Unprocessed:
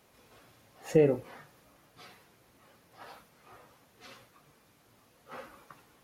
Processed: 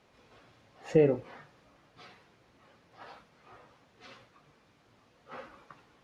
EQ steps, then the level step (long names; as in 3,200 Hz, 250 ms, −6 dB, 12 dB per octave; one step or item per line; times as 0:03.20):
low-pass filter 4,900 Hz 12 dB per octave
0.0 dB